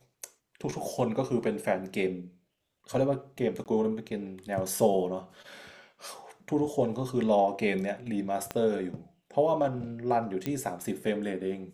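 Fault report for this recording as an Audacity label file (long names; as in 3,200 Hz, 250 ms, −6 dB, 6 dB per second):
3.640000	3.660000	drop-out 18 ms
8.510000	8.510000	click −17 dBFS
10.460000	10.460000	click −17 dBFS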